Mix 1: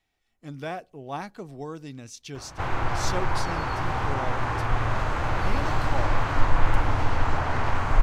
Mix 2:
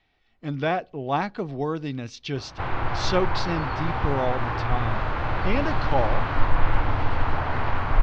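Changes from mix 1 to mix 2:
speech +9.0 dB
master: add low-pass filter 4,400 Hz 24 dB per octave

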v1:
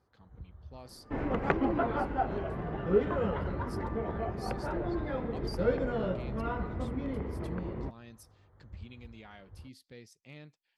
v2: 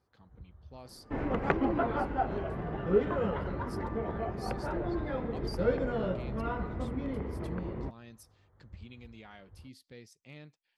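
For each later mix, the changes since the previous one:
first sound −3.5 dB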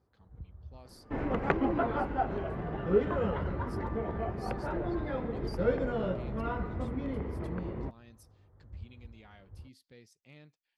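speech −5.0 dB
first sound: add tilt shelving filter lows +5 dB, about 870 Hz

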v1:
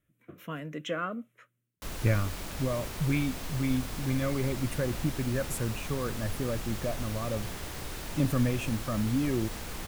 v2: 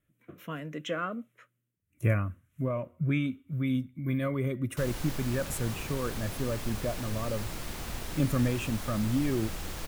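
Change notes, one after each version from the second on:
background: entry +2.95 s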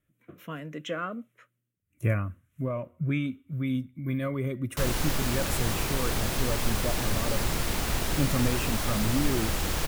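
background +11.0 dB
reverb: off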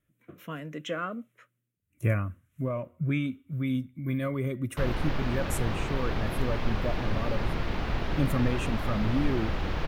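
background: add high-frequency loss of the air 300 metres

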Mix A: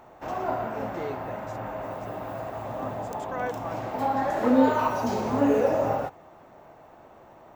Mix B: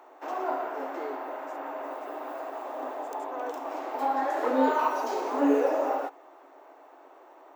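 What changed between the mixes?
speech: add parametric band 2,500 Hz −13 dB 2.1 octaves
master: add Chebyshev high-pass with heavy ripple 270 Hz, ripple 3 dB

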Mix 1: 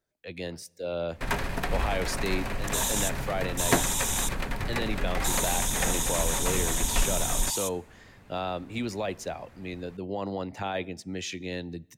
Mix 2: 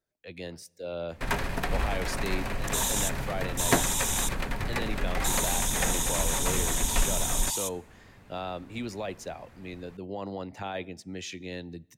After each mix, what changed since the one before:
speech −3.5 dB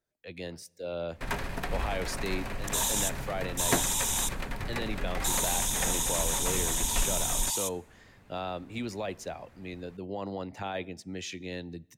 first sound −4.0 dB

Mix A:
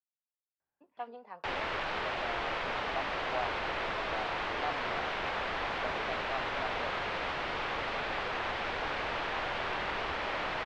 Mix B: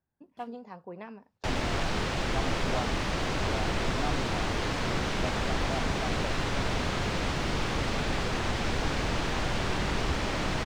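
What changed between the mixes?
speech: entry −0.60 s
master: remove three-way crossover with the lows and the highs turned down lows −17 dB, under 460 Hz, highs −24 dB, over 3,700 Hz

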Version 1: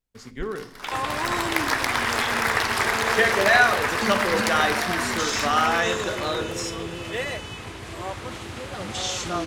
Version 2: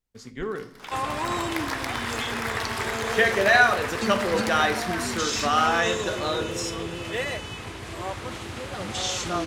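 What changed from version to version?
first sound −7.5 dB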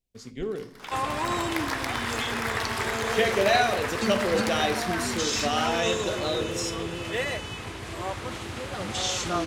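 speech: add flat-topped bell 1,300 Hz −11 dB 1.3 octaves

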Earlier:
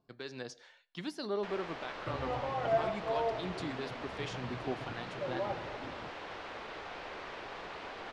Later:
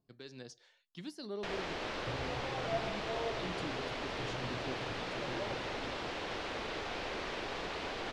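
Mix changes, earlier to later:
speech: send off
first sound +11.0 dB
master: add parametric band 1,100 Hz −9 dB 2.9 octaves

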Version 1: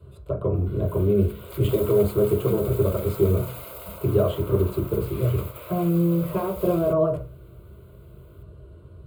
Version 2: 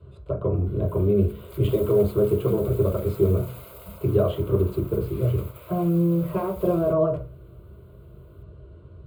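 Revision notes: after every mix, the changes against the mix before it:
speech: add high-frequency loss of the air 86 metres
background −6.0 dB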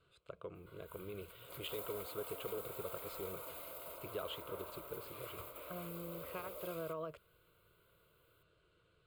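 background −3.5 dB
reverb: off

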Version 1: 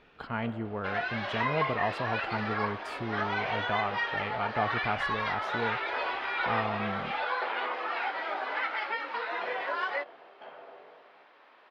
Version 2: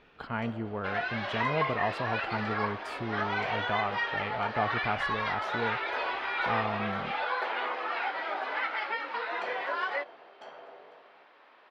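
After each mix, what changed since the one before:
first sound: remove low-pass filter 3,300 Hz 24 dB per octave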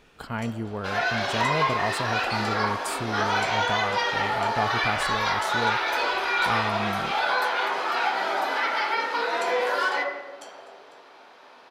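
speech: add spectral tilt −1.5 dB per octave
second sound: send on
master: remove high-frequency loss of the air 320 metres

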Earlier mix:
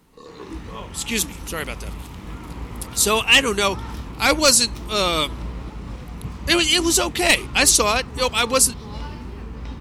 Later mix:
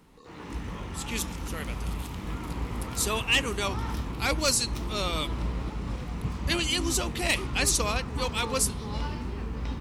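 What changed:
speech −12.0 dB
reverb: on, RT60 1.0 s

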